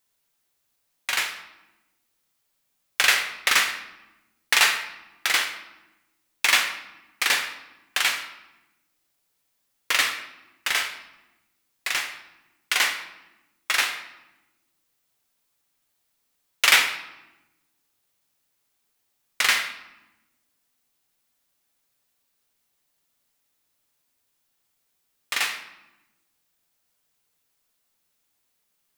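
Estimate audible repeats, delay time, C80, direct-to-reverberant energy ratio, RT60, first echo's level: no echo, no echo, 11.0 dB, 4.5 dB, 1.0 s, no echo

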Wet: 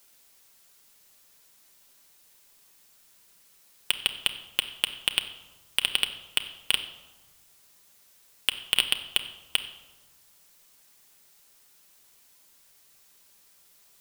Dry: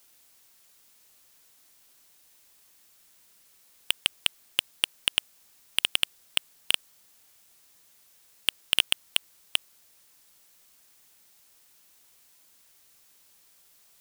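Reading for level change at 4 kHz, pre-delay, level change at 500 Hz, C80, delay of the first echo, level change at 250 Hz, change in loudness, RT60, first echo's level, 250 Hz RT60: +0.5 dB, 5 ms, +1.5 dB, 13.0 dB, no echo, +1.0 dB, 0.0 dB, 1.2 s, no echo, 1.4 s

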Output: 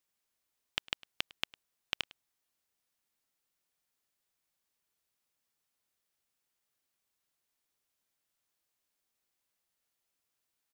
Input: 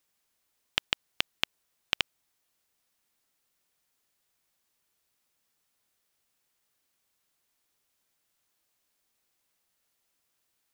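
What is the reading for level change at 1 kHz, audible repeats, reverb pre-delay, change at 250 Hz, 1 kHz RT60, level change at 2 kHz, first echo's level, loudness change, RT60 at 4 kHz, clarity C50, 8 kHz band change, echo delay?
-7.0 dB, 1, no reverb, -7.0 dB, no reverb, -7.0 dB, -22.0 dB, -7.0 dB, no reverb, no reverb, -7.0 dB, 104 ms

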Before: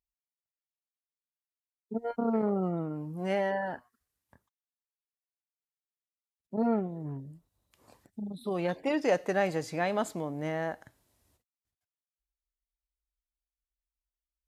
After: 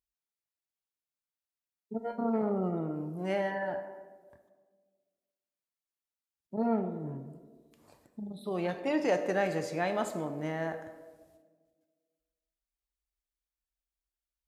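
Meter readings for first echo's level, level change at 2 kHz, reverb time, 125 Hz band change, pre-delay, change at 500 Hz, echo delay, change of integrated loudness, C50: no echo, -1.0 dB, 1.6 s, -1.5 dB, 3 ms, -1.0 dB, no echo, -1.5 dB, 9.5 dB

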